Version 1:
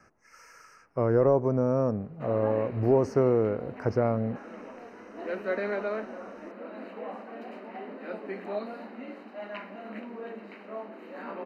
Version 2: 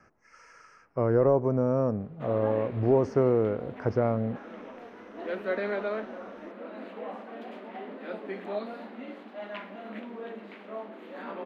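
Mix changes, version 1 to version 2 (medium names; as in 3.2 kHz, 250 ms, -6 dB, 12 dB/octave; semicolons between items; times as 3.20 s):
speech: add distance through air 84 m; master: remove Butterworth band-stop 3.4 kHz, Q 4.8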